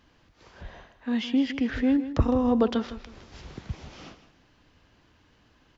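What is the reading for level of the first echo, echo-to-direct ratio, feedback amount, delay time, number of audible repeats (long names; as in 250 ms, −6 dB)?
−13.0 dB, −12.5 dB, 28%, 159 ms, 2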